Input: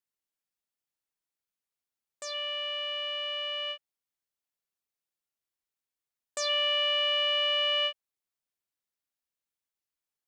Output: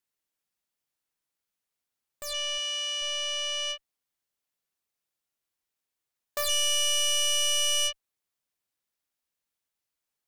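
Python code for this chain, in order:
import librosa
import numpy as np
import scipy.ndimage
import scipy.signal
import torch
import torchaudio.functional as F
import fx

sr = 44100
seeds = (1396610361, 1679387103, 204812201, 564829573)

p1 = fx.tracing_dist(x, sr, depth_ms=0.16)
p2 = fx.highpass(p1, sr, hz=1100.0, slope=6, at=(2.57, 3.01), fade=0.02)
p3 = fx.clip_asym(p2, sr, top_db=-39.0, bottom_db=-23.5)
y = p2 + F.gain(torch.from_numpy(p3), -4.0).numpy()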